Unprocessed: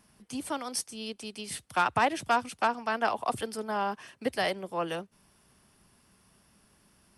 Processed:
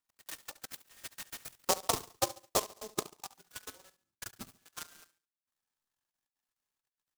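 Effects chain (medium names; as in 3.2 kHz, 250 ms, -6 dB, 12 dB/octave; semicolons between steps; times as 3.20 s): every band turned upside down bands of 2 kHz; Doppler pass-by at 2.01 s, 18 m/s, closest 12 m; chord resonator F2 major, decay 0.29 s; transient shaper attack +11 dB, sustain -1 dB; treble shelf 4 kHz +2.5 dB; touch-sensitive phaser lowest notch 470 Hz, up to 1.6 kHz, full sweep at -40.5 dBFS; transient shaper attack +11 dB, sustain -12 dB; level held to a coarse grid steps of 16 dB; feedback delay 70 ms, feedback 37%, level -16.5 dB; delay time shaken by noise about 5.7 kHz, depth 0.14 ms; trim +6 dB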